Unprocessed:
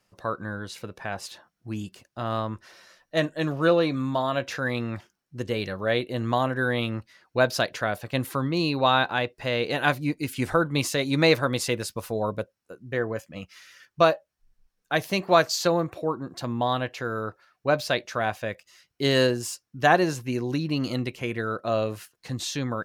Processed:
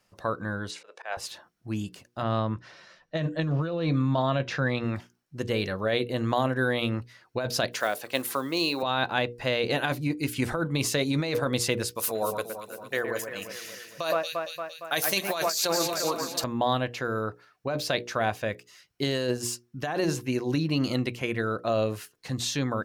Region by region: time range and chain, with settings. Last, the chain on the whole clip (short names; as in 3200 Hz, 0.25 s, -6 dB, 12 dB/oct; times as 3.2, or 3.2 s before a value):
0.71–1.17 Chebyshev band-pass 490–8400 Hz, order 3 + auto swell 0.105 s
2.22–4.84 LPF 5000 Hz + bell 150 Hz +8.5 dB 0.58 oct
7.71–8.83 block floating point 7-bit + HPF 350 Hz + high shelf 5500 Hz +6.5 dB
11.95–16.44 RIAA curve recording + echo with dull and thin repeats by turns 0.115 s, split 2300 Hz, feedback 75%, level -7.5 dB
whole clip: notches 60/120/180/240/300/360/420/480 Hz; dynamic EQ 1400 Hz, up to -3 dB, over -31 dBFS, Q 0.71; negative-ratio compressor -25 dBFS, ratio -1